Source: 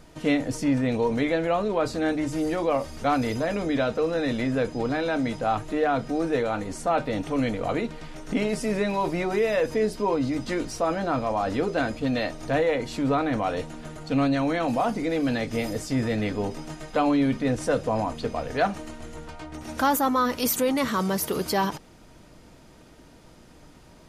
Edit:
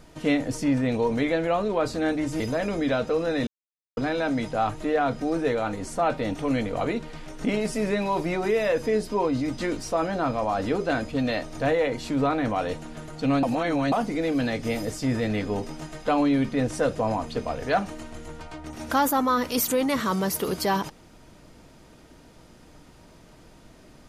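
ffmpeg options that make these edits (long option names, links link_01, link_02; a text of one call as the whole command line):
ffmpeg -i in.wav -filter_complex "[0:a]asplit=6[link_01][link_02][link_03][link_04][link_05][link_06];[link_01]atrim=end=2.402[link_07];[link_02]atrim=start=3.278:end=4.35,asetpts=PTS-STARTPTS,afade=type=out:start_time=1.068:duration=0.004:curve=hsin[link_08];[link_03]atrim=start=4.35:end=4.85,asetpts=PTS-STARTPTS,volume=0[link_09];[link_04]atrim=start=4.85:end=14.312,asetpts=PTS-STARTPTS,afade=type=in:duration=0.004:curve=hsin[link_10];[link_05]atrim=start=14.308:end=14.802,asetpts=PTS-STARTPTS,areverse[link_11];[link_06]atrim=start=14.798[link_12];[link_08][link_09][link_10]concat=n=3:v=0:a=1[link_13];[link_07][link_13]acrossfade=duration=0.004:curve1=hsin:curve2=hsin[link_14];[link_14][link_11]acrossfade=duration=0.004:curve1=hsin:curve2=hsin[link_15];[link_15][link_12]acrossfade=duration=0.004:curve1=hsin:curve2=hsin" out.wav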